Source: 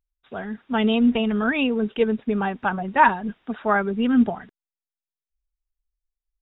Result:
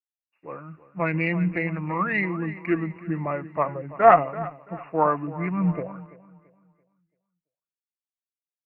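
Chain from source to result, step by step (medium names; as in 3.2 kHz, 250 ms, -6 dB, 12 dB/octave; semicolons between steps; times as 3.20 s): high-pass 330 Hz 6 dB/octave; treble shelf 2.5 kHz +4.5 dB; Chebyshev shaper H 2 -22 dB, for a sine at -3 dBFS; in parallel at +1 dB: compression, threshold -26 dBFS, peak gain reduction 15 dB; on the sum: speed mistake 45 rpm record played at 33 rpm; on a send: feedback delay 336 ms, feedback 52%, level -12 dB; on the sum: three bands expanded up and down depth 70%; trim -6.5 dB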